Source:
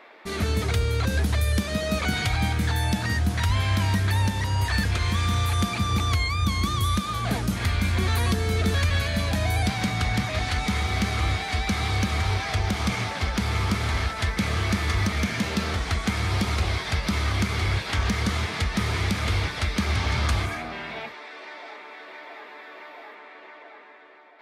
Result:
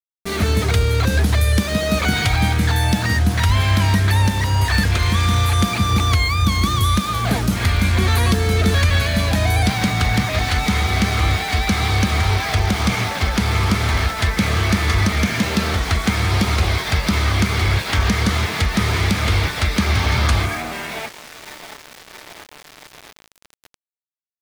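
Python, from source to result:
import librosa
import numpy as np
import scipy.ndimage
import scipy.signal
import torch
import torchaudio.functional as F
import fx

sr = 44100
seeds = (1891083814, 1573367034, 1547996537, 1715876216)

y = np.where(np.abs(x) >= 10.0 ** (-36.5 / 20.0), x, 0.0)
y = y * librosa.db_to_amplitude(7.0)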